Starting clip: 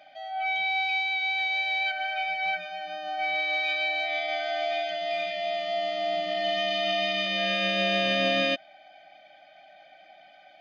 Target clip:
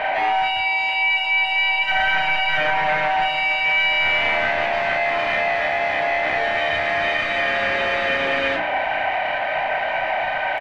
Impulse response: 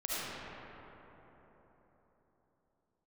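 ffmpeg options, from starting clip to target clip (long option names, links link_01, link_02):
-filter_complex "[0:a]bandreject=frequency=60:width_type=h:width=6,bandreject=frequency=120:width_type=h:width=6,bandreject=frequency=180:width_type=h:width=6,bandreject=frequency=240:width_type=h:width=6,bandreject=frequency=300:width_type=h:width=6,bandreject=frequency=360:width_type=h:width=6,asplit=2[link_01][link_02];[link_02]acrusher=bits=3:mode=log:mix=0:aa=0.000001,volume=-10dB[link_03];[link_01][link_03]amix=inputs=2:normalize=0,asplit=2[link_04][link_05];[link_05]highpass=frequency=720:poles=1,volume=34dB,asoftclip=type=tanh:threshold=-10dB[link_06];[link_04][link_06]amix=inputs=2:normalize=0,lowpass=frequency=1200:poles=1,volume=-6dB,asoftclip=type=tanh:threshold=-29dB,lowpass=frequency=1900:width_type=q:width=2.7,asplit=4[link_07][link_08][link_09][link_10];[link_08]asetrate=37084,aresample=44100,atempo=1.18921,volume=-17dB[link_11];[link_09]asetrate=52444,aresample=44100,atempo=0.840896,volume=-15dB[link_12];[link_10]asetrate=55563,aresample=44100,atempo=0.793701,volume=-8dB[link_13];[link_07][link_11][link_12][link_13]amix=inputs=4:normalize=0,asplit=2[link_14][link_15];[link_15]adelay=33,volume=-4dB[link_16];[link_14][link_16]amix=inputs=2:normalize=0,asplit=2[link_17][link_18];[1:a]atrim=start_sample=2205[link_19];[link_18][link_19]afir=irnorm=-1:irlink=0,volume=-21dB[link_20];[link_17][link_20]amix=inputs=2:normalize=0,volume=5dB"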